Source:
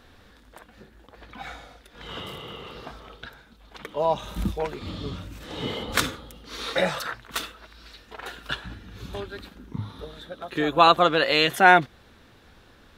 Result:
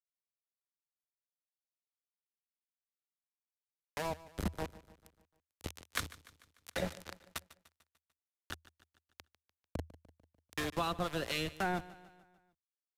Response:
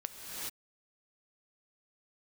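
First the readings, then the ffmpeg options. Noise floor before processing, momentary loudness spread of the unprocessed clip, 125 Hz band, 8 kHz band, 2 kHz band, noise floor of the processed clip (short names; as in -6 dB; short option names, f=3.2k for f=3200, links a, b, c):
-54 dBFS, 24 LU, -10.5 dB, -10.0 dB, -18.5 dB, under -85 dBFS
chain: -filter_complex "[0:a]aeval=exprs='val(0)*gte(abs(val(0)),0.0794)':c=same,aresample=32000,aresample=44100,acrossover=split=270[a][b];[b]acompressor=threshold=-29dB:ratio=4[c];[a][c]amix=inputs=2:normalize=0,acrossover=split=820[d][e];[d]aeval=exprs='val(0)*(1-0.5/2+0.5/2*cos(2*PI*4.1*n/s))':c=same[f];[e]aeval=exprs='val(0)*(1-0.5/2-0.5/2*cos(2*PI*4.1*n/s))':c=same[g];[f][g]amix=inputs=2:normalize=0,equalizer=f=80:w=3.7:g=12.5,asplit=2[h][i];[i]aecho=0:1:148|296|444|592|740:0.119|0.0642|0.0347|0.0187|0.0101[j];[h][j]amix=inputs=2:normalize=0,volume=-4.5dB"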